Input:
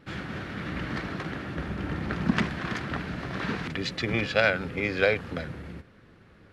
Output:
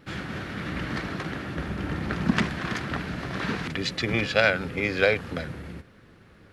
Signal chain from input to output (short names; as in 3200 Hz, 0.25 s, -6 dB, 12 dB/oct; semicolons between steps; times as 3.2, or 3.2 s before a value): high shelf 6500 Hz +7 dB; gain +1.5 dB